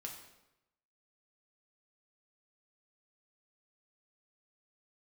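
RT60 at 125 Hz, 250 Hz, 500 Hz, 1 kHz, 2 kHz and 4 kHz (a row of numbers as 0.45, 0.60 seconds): 1.0, 0.95, 0.95, 0.90, 0.85, 0.75 seconds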